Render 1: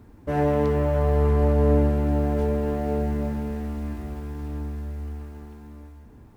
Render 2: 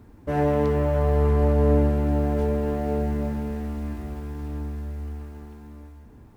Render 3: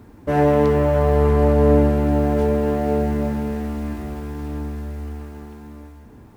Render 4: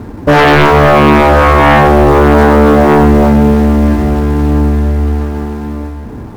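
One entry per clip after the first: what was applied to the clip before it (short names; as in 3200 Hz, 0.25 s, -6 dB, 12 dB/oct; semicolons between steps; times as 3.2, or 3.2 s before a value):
nothing audible
low shelf 77 Hz -8.5 dB; gain +6.5 dB
median filter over 15 samples; sine folder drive 12 dB, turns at -6 dBFS; gain +3.5 dB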